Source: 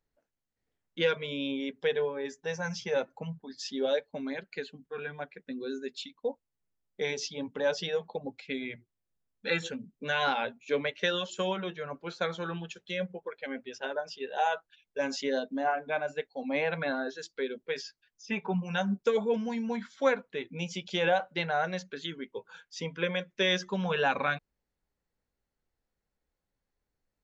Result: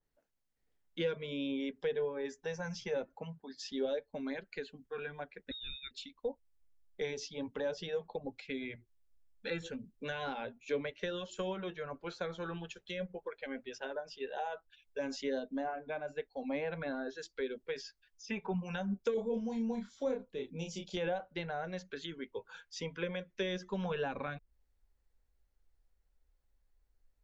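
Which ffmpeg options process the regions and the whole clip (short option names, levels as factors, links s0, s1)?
-filter_complex "[0:a]asettb=1/sr,asplit=3[s0][s1][s2];[s0]atrim=end=3.144[s3];[s1]atrim=start=3.14:end=3.72,asetpts=PTS-STARTPTS,afade=t=in:d=0.004:c=qsin,afade=t=out:st=0.576:d=0.004:c=qsin,highpass=f=160:p=1,highshelf=f=4100:g=-5.5[s4];[s2]atrim=start=3.716[s5];[s3][s4]acrossfade=d=0.004:c1=hsin:c2=qsin[s6];[s6][s5]acrossfade=d=0.004:c1=qsin:c2=hsin,asettb=1/sr,asplit=3[s7][s8][s9];[s7]atrim=end=5.514[s10];[s8]atrim=start=5.51:end=5.91,asetpts=PTS-STARTPTS,afade=t=in:d=0.004:c=qsin,afade=t=out:st=0.396:d=0.004:c=qsin,tiltshelf=f=1100:g=-6.5,lowpass=f=3400:t=q:w=0.5098,lowpass=f=3400:t=q:w=0.6013,lowpass=f=3400:t=q:w=0.9,lowpass=f=3400:t=q:w=2.563,afreqshift=-4000,asuperstop=centerf=670:order=4:qfactor=0.55[s11];[s9]atrim=start=5.906[s12];[s10][s11]acrossfade=d=0.004:c1=hsin:c2=qsin[s13];[s13][s12]acrossfade=d=0.004:c1=qsin:c2=hsin,asettb=1/sr,asplit=3[s14][s15][s16];[s14]atrim=end=19.144[s17];[s15]atrim=start=19.14:end=20.97,asetpts=PTS-STARTPTS,afade=t=in:d=0.004:c=qsin,afade=t=out:st=1.826:d=0.004:c=qsin,equalizer=f=1800:w=0.78:g=-14.5,asplit=2[s18][s19];[s19]adelay=31,volume=0.631[s20];[s18][s20]amix=inputs=2:normalize=0,atrim=end_sample=80703[s21];[s16]atrim=start=20.966[s22];[s17][s21]acrossfade=d=0.004:c1=hsin:c2=qsin[s23];[s23][s22]acrossfade=d=0.004:c1=qsin:c2=hsin,asubboost=boost=8.5:cutoff=54,acrossover=split=440[s24][s25];[s25]acompressor=threshold=0.01:ratio=4[s26];[s24][s26]amix=inputs=2:normalize=0,adynamicequalizer=threshold=0.00251:dfrequency=2300:dqfactor=0.7:tfrequency=2300:tqfactor=0.7:attack=5:release=100:ratio=0.375:range=1.5:mode=cutabove:tftype=highshelf,volume=0.891"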